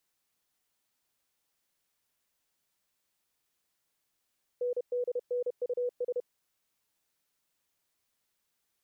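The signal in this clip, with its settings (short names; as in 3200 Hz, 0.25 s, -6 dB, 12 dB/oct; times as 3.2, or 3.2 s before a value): Morse "NDNUS" 31 wpm 491 Hz -28 dBFS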